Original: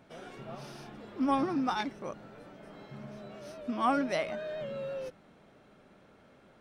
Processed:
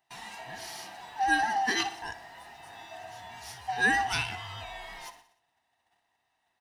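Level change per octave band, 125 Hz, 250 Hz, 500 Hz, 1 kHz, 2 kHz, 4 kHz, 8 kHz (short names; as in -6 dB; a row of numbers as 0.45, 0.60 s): +1.0, -8.5, -8.0, +4.0, +14.0, +10.0, +14.0 dB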